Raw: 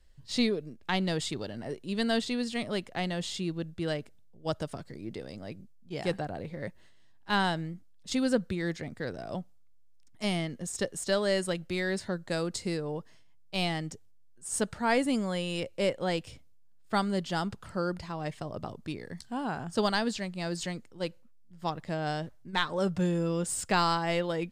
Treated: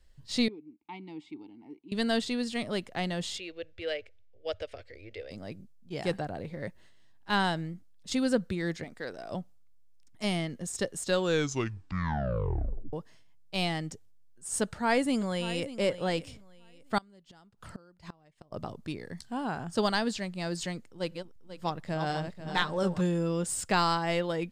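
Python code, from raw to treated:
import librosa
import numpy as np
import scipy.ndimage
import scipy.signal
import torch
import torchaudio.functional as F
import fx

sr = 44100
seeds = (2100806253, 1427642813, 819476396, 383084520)

y = fx.vowel_filter(x, sr, vowel='u', at=(0.48, 1.92))
y = fx.curve_eq(y, sr, hz=(100.0, 150.0, 340.0, 510.0, 960.0, 2300.0, 3900.0, 5700.0, 9600.0), db=(0, -28, -10, 4, -13, 7, -2, -6, -18), at=(3.38, 5.31))
y = fx.peak_eq(y, sr, hz=110.0, db=-13.5, octaves=2.2, at=(8.84, 9.32))
y = fx.echo_throw(y, sr, start_s=14.62, length_s=1.03, ms=590, feedback_pct=25, wet_db=-14.5)
y = fx.gate_flip(y, sr, shuts_db=-29.0, range_db=-27, at=(16.98, 18.52))
y = fx.reverse_delay_fb(y, sr, ms=245, feedback_pct=51, wet_db=-6.5, at=(20.87, 23.01))
y = fx.edit(y, sr, fx.tape_stop(start_s=11.01, length_s=1.92), tone=tone)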